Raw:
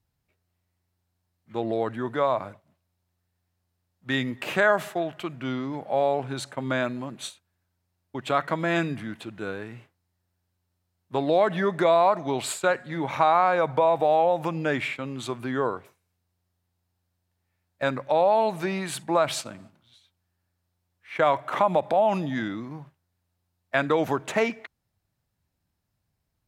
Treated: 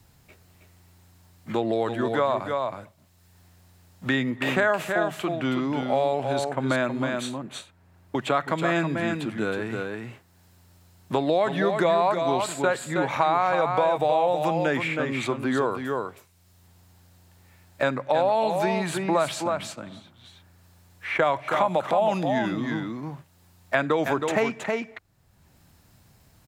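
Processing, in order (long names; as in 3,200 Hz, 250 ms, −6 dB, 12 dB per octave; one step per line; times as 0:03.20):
parametric band 7,300 Hz +3.5 dB 0.24 octaves
single-tap delay 319 ms −7 dB
multiband upward and downward compressor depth 70%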